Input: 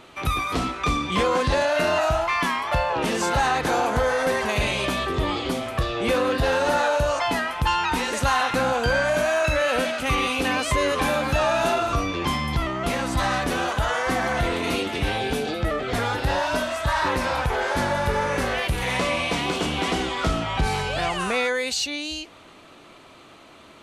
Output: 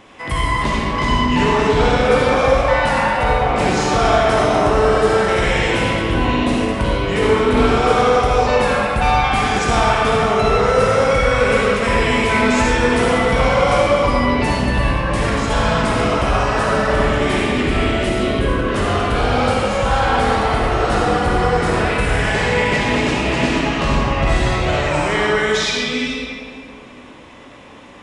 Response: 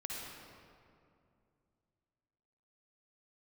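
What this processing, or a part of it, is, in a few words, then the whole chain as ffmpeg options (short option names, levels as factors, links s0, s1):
slowed and reverbed: -filter_complex "[0:a]asetrate=37485,aresample=44100[s0];[1:a]atrim=start_sample=2205[s1];[s0][s1]afir=irnorm=-1:irlink=0,volume=2.11"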